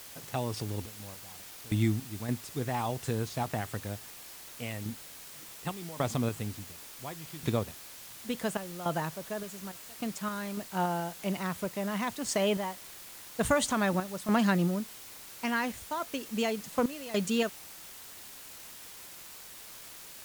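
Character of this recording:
sample-and-hold tremolo, depth 95%
a quantiser's noise floor 8 bits, dither triangular
AAC

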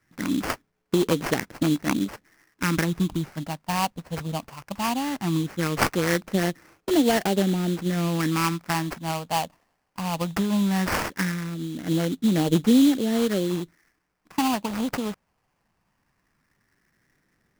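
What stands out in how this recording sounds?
phaser sweep stages 4, 0.18 Hz, lowest notch 360–1,200 Hz
aliases and images of a low sample rate 3,700 Hz, jitter 20%

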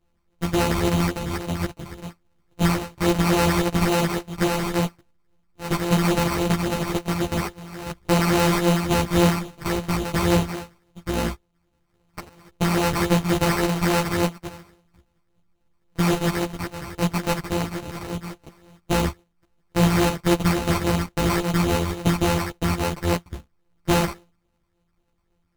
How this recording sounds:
a buzz of ramps at a fixed pitch in blocks of 256 samples
phaser sweep stages 12, 3.6 Hz, lowest notch 500–4,300 Hz
aliases and images of a low sample rate 3,400 Hz, jitter 0%
a shimmering, thickened sound

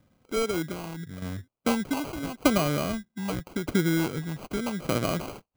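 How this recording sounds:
tremolo saw down 0.82 Hz, depth 60%
phaser sweep stages 6, 0.86 Hz, lowest notch 490–3,300 Hz
aliases and images of a low sample rate 1,800 Hz, jitter 0%

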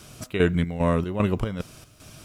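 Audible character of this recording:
chopped level 2.5 Hz, depth 65%, duty 60%
a quantiser's noise floor 12 bits, dither none

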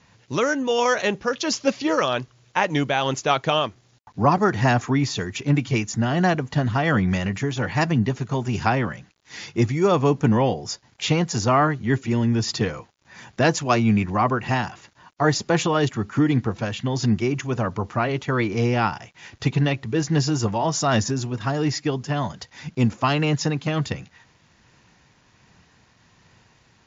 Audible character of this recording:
tremolo triangle 1.3 Hz, depth 35%
a quantiser's noise floor 10 bits, dither none
WMA

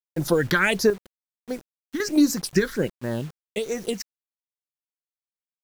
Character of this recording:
chopped level 0.5 Hz, depth 60%, duty 45%
phaser sweep stages 6, 1.4 Hz, lowest notch 670–3,100 Hz
a quantiser's noise floor 8 bits, dither none

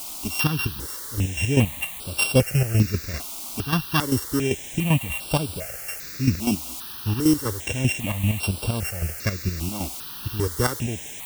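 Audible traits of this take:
a buzz of ramps at a fixed pitch in blocks of 16 samples
chopped level 5.1 Hz, depth 65%, duty 40%
a quantiser's noise floor 6 bits, dither triangular
notches that jump at a steady rate 2.5 Hz 470–6,600 Hz

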